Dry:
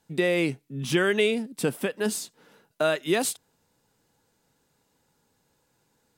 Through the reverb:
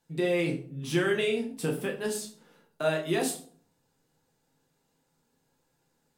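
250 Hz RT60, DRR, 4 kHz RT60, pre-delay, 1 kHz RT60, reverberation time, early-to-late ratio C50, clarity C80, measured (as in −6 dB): 0.70 s, 0.0 dB, 0.35 s, 6 ms, 0.45 s, 0.50 s, 9.5 dB, 14.0 dB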